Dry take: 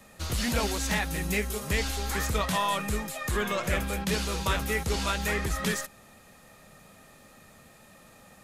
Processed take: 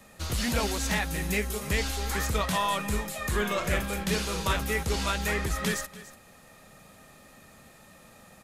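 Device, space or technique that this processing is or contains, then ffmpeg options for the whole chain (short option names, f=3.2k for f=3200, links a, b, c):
ducked delay: -filter_complex "[0:a]asettb=1/sr,asplit=3[a][b][c];[a]atrim=end=2.854[d];[b]atrim=start=2.85:end=4.53,asetpts=PTS-STARTPTS,afade=t=in:d=0.004:c=qsin,afade=t=out:st=1.676:d=0.004:c=qsin,asplit=2[e][f];[f]adelay=39,volume=-9dB[g];[e][g]amix=inputs=2:normalize=0,atrim=end_sample=74088[h];[c]atrim=start=4.526[i];[d][h]acrossfade=d=0.004:c1=hsin:c2=qsin[j];[j][i]acrossfade=d=0.004:c1=qsin:c2=hsin,asplit=3[k][l][m];[l]adelay=289,volume=-7.5dB[n];[m]apad=whole_len=384937[o];[n][o]sidechaincompress=threshold=-35dB:ratio=10:attack=6.2:release=974[p];[k][p]amix=inputs=2:normalize=0"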